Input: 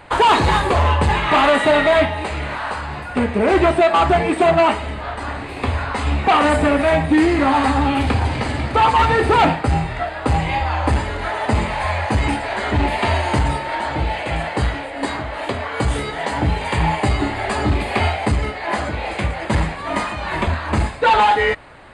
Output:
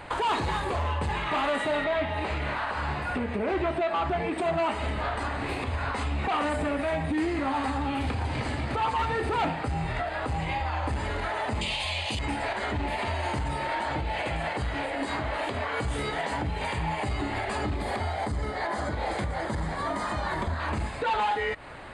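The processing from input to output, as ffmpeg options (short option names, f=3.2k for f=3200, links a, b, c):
-filter_complex "[0:a]asettb=1/sr,asplit=3[a][b][c];[a]atrim=end=1.844[d];[b]atrim=start=1.84:end=4.38,asetpts=PTS-STARTPTS,afade=t=in:d=0.004:c=qsin,afade=t=out:st=2.536:d=0.004:c=qsin,acrossover=split=5000[e][f];[f]acompressor=threshold=-54dB:ratio=4:attack=1:release=60[g];[e][g]amix=inputs=2:normalize=0[h];[c]atrim=start=4.376[i];[d][h]acrossfade=d=0.004:c1=hsin:c2=qsin[j];[j][i]acrossfade=d=0.004:c1=qsin:c2=hsin,asettb=1/sr,asplit=3[k][l][m];[k]atrim=end=11.614[n];[l]atrim=start=11.61:end=12.19,asetpts=PTS-STARTPTS,afade=t=in:d=0.004:c=qsin,afade=t=out:st=0.576:d=0.004:c=qsin,highshelf=f=2.2k:t=q:w=3:g=11[o];[m]atrim=start=12.186[p];[n][o]acrossfade=d=0.004:c1=hsin:c2=qsin[q];[q][p]acrossfade=d=0.004:c1=qsin:c2=hsin,asettb=1/sr,asplit=3[r][s][t];[r]atrim=end=17.764[u];[s]atrim=start=17.76:end=20.6,asetpts=PTS-STARTPTS,afade=t=in:d=0.004:c=qsin,afade=t=out:st=2.836:d=0.004:c=qsin,equalizer=f=2.6k:t=o:w=0.41:g=-13[v];[t]atrim=start=20.596[w];[u][v]acrossfade=d=0.004:c1=hsin:c2=qsin[x];[x][w]acrossfade=d=0.004:c1=qsin:c2=hsin,acompressor=threshold=-22dB:ratio=6,alimiter=limit=-21dB:level=0:latency=1:release=126"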